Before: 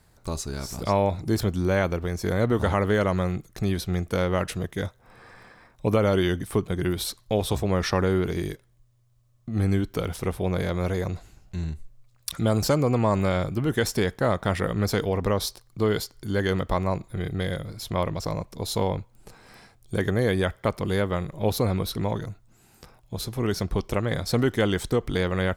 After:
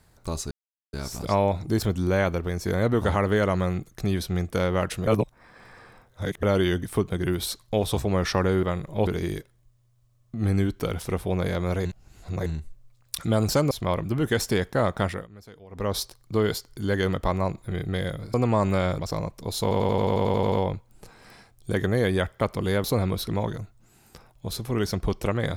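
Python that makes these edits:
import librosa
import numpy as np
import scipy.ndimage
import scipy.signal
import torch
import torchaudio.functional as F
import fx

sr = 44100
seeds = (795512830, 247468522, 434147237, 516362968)

y = fx.edit(x, sr, fx.insert_silence(at_s=0.51, length_s=0.42),
    fx.reverse_span(start_s=4.65, length_s=1.36),
    fx.reverse_span(start_s=10.99, length_s=0.61),
    fx.swap(start_s=12.85, length_s=0.65, other_s=17.8, other_length_s=0.33),
    fx.fade_down_up(start_s=14.48, length_s=0.93, db=-22.5, fade_s=0.25),
    fx.stutter(start_s=18.76, slice_s=0.09, count=11),
    fx.move(start_s=21.08, length_s=0.44, to_s=8.21), tone=tone)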